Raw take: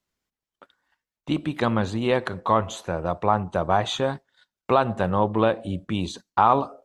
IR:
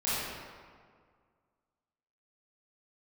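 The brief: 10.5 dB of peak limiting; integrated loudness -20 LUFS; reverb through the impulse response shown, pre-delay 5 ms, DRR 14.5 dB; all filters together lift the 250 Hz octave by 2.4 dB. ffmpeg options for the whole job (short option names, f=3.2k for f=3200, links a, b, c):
-filter_complex "[0:a]equalizer=f=250:t=o:g=3,alimiter=limit=-15.5dB:level=0:latency=1,asplit=2[a][b];[1:a]atrim=start_sample=2205,adelay=5[c];[b][c]afir=irnorm=-1:irlink=0,volume=-24dB[d];[a][d]amix=inputs=2:normalize=0,volume=8.5dB"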